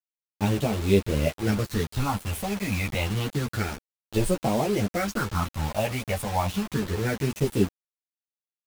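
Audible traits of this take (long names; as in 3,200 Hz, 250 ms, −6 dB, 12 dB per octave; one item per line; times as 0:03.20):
phaser sweep stages 6, 0.29 Hz, lowest notch 350–1,600 Hz
a quantiser's noise floor 6 bits, dither none
a shimmering, thickened sound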